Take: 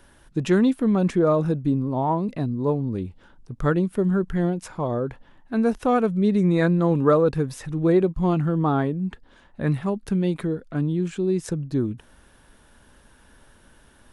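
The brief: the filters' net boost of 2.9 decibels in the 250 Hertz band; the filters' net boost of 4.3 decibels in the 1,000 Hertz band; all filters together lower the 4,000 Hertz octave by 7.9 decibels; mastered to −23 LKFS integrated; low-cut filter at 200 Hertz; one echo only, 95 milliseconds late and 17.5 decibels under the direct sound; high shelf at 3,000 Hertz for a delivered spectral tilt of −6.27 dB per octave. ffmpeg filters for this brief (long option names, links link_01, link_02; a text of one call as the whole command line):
ffmpeg -i in.wav -af "highpass=200,equalizer=frequency=250:width_type=o:gain=6.5,equalizer=frequency=1000:width_type=o:gain=6.5,highshelf=frequency=3000:gain=-8,equalizer=frequency=4000:width_type=o:gain=-4.5,aecho=1:1:95:0.133,volume=-2.5dB" out.wav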